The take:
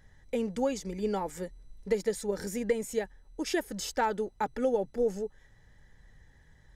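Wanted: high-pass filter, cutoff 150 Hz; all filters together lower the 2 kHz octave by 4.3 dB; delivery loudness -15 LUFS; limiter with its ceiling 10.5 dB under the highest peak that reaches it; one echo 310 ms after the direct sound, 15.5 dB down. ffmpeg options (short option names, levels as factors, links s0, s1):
-af "highpass=150,equalizer=f=2000:t=o:g=-5.5,alimiter=level_in=1.33:limit=0.0631:level=0:latency=1,volume=0.75,aecho=1:1:310:0.168,volume=12.6"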